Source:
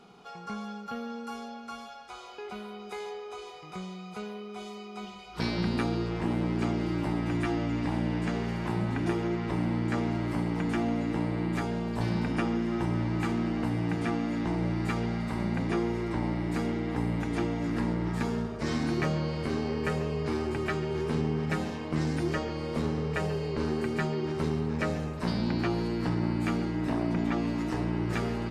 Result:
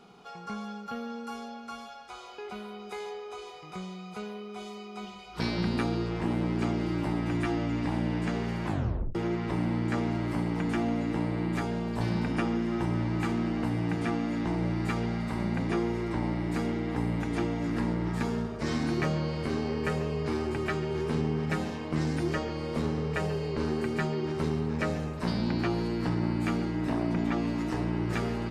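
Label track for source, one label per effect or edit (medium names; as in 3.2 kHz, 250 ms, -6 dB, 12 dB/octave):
8.670000	8.670000	tape stop 0.48 s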